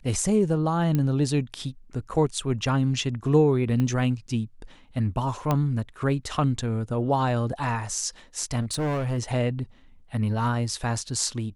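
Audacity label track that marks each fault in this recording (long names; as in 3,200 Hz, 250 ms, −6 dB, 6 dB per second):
0.950000	0.950000	click −13 dBFS
3.800000	3.800000	click −16 dBFS
5.510000	5.510000	click −11 dBFS
8.600000	9.190000	clipping −23.5 dBFS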